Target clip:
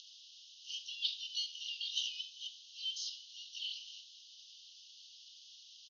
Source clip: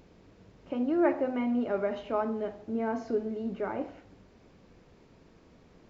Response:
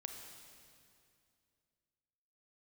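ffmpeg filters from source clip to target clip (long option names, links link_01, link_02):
-filter_complex "[0:a]asplit=3[link_01][link_02][link_03];[link_02]asetrate=33038,aresample=44100,atempo=1.33484,volume=-3dB[link_04];[link_03]asetrate=88200,aresample=44100,atempo=0.5,volume=-11dB[link_05];[link_01][link_04][link_05]amix=inputs=3:normalize=0,asuperpass=centerf=4400:order=20:qfactor=1.2,volume=17.5dB"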